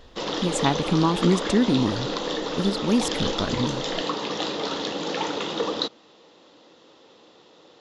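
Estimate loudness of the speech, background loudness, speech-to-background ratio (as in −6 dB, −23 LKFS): −24.5 LKFS, −28.0 LKFS, 3.5 dB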